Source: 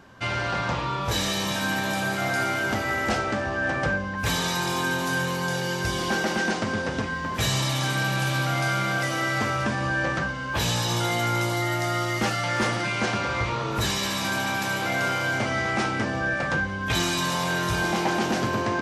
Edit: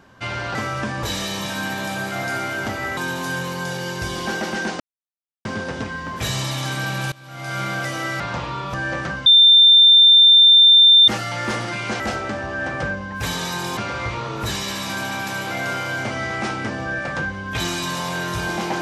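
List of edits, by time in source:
0.55–1.09 s: swap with 9.38–9.86 s
3.03–4.80 s: move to 13.12 s
6.63 s: insert silence 0.65 s
8.30–8.78 s: fade in quadratic, from -21.5 dB
10.38–12.20 s: bleep 3.58 kHz -7 dBFS

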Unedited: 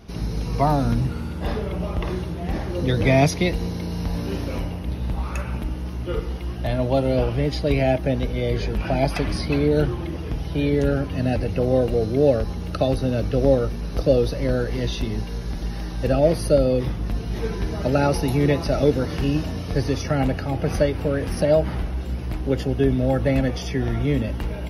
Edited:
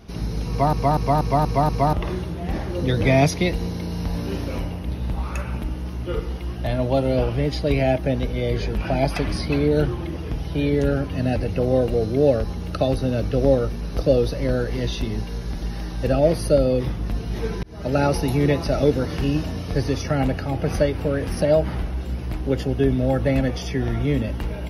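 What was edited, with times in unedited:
0.49 s: stutter in place 0.24 s, 6 plays
17.63–17.99 s: fade in

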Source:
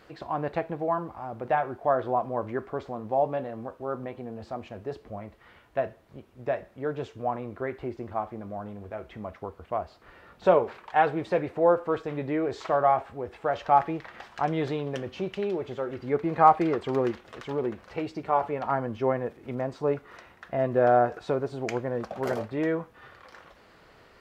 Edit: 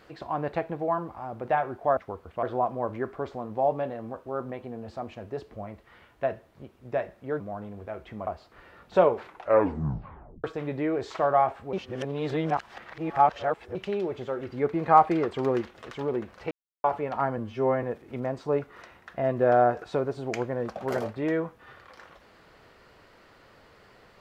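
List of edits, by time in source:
6.94–8.44 s: delete
9.31–9.77 s: move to 1.97 s
10.68 s: tape stop 1.26 s
13.23–15.25 s: reverse
18.01–18.34 s: mute
18.88–19.18 s: stretch 1.5×

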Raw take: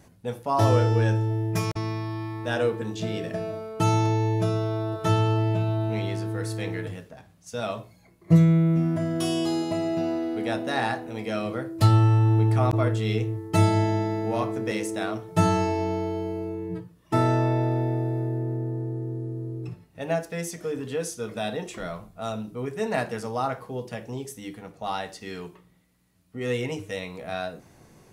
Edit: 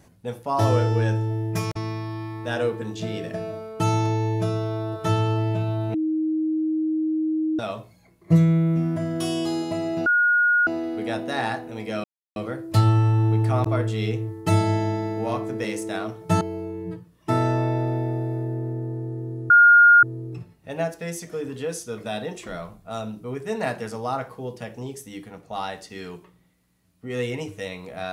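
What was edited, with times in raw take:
5.94–7.59 s: bleep 314 Hz -20.5 dBFS
10.06 s: add tone 1.44 kHz -15.5 dBFS 0.61 s
11.43 s: insert silence 0.32 s
15.48–16.25 s: delete
19.34 s: add tone 1.42 kHz -9 dBFS 0.53 s

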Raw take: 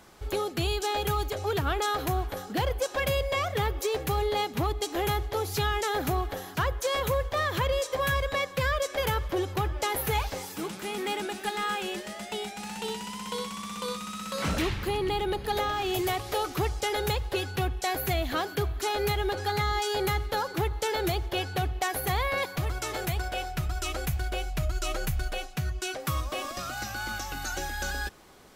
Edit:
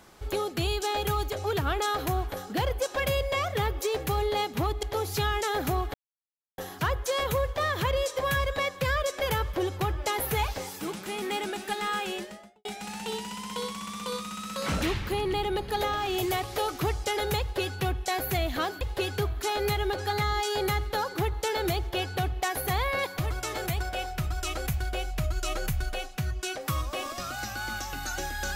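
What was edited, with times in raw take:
4.83–5.23 s: delete
6.34 s: insert silence 0.64 s
11.87–12.41 s: studio fade out
17.16–17.53 s: copy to 18.57 s

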